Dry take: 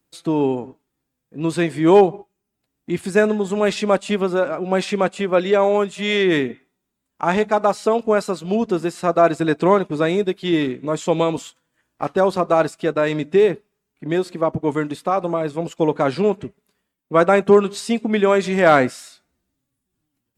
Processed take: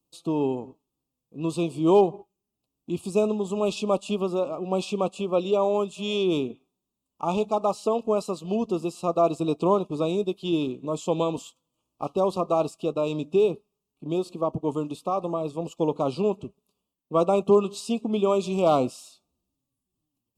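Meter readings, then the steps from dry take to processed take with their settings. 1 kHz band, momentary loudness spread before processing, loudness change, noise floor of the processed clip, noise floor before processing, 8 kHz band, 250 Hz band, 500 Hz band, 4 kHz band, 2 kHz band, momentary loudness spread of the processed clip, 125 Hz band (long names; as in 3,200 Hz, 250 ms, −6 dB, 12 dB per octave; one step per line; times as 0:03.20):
−7.5 dB, 9 LU, −6.5 dB, −84 dBFS, −78 dBFS, −6.5 dB, −6.0 dB, −6.5 dB, −7.0 dB, −18.0 dB, 9 LU, −6.0 dB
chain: elliptic band-stop filter 1,200–2,600 Hz, stop band 60 dB
level −6 dB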